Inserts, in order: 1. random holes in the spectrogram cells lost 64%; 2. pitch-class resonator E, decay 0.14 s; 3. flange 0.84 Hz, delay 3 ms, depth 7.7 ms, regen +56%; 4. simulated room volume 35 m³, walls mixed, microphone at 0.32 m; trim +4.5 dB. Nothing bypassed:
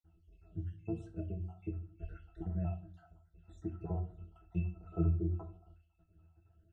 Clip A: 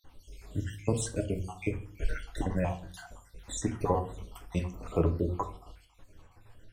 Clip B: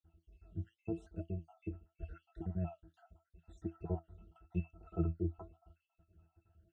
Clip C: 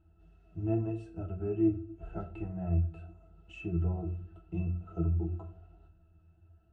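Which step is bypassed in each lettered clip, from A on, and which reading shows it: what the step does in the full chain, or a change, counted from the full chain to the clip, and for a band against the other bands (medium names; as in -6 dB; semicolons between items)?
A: 2, 125 Hz band -12.0 dB; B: 4, echo-to-direct -5.5 dB to none; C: 1, 125 Hz band -3.5 dB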